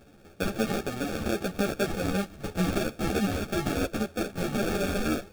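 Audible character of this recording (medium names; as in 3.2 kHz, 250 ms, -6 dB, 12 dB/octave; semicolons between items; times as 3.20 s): aliases and images of a low sample rate 1 kHz, jitter 0%; a shimmering, thickened sound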